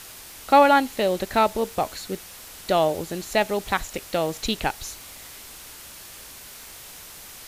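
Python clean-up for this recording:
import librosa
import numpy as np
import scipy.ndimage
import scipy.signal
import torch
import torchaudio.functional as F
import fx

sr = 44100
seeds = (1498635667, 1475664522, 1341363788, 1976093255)

y = fx.fix_declick_ar(x, sr, threshold=6.5)
y = fx.noise_reduce(y, sr, print_start_s=6.03, print_end_s=6.53, reduce_db=26.0)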